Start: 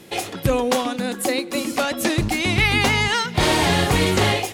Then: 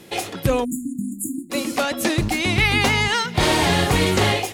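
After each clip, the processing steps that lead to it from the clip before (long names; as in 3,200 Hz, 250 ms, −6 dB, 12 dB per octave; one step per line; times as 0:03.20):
floating-point word with a short mantissa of 6 bits
time-frequency box erased 0:00.65–0:01.50, 340–6,700 Hz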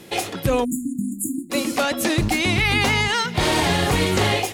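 brickwall limiter −11.5 dBFS, peak gain reduction 4.5 dB
level +1.5 dB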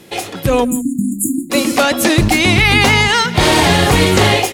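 automatic gain control gain up to 8 dB
slap from a distant wall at 29 metres, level −20 dB
level +1.5 dB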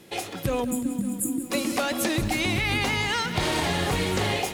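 downward compressor, threshold −13 dBFS, peak gain reduction 6.5 dB
feedback echo at a low word length 185 ms, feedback 80%, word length 6 bits, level −14 dB
level −9 dB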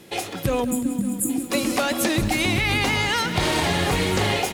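single-tap delay 1,177 ms −15 dB
level +3.5 dB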